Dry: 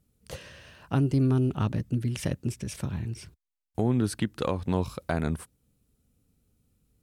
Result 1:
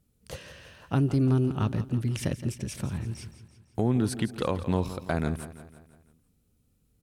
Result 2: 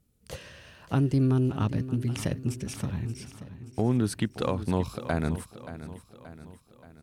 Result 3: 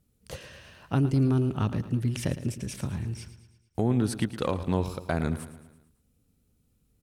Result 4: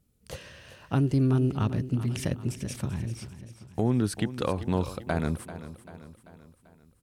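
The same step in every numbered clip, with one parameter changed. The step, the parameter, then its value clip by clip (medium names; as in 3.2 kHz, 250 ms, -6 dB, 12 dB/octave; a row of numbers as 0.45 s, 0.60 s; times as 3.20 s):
feedback delay, time: 168 ms, 578 ms, 111 ms, 390 ms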